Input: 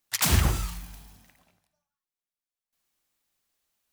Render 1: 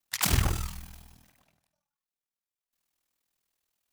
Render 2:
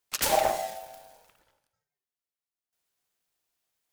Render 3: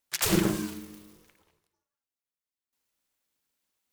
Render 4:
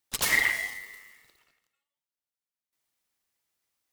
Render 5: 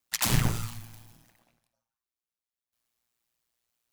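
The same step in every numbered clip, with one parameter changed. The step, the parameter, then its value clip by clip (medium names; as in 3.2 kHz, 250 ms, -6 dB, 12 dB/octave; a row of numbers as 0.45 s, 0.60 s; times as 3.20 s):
ring modulator, frequency: 20 Hz, 710 Hz, 260 Hz, 2 kHz, 59 Hz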